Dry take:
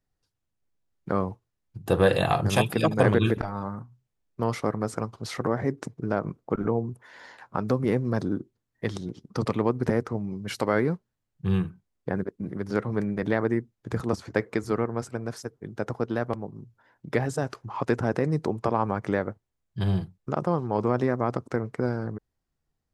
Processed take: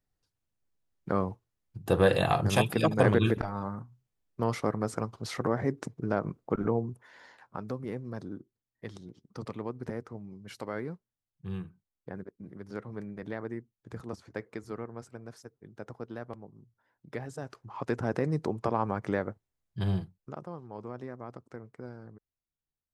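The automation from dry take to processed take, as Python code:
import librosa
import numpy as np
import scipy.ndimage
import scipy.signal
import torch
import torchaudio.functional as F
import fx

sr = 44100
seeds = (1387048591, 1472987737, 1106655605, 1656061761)

y = fx.gain(x, sr, db=fx.line((6.76, -2.5), (7.85, -12.5), (17.29, -12.5), (18.16, -4.0), (19.94, -4.0), (20.49, -16.5)))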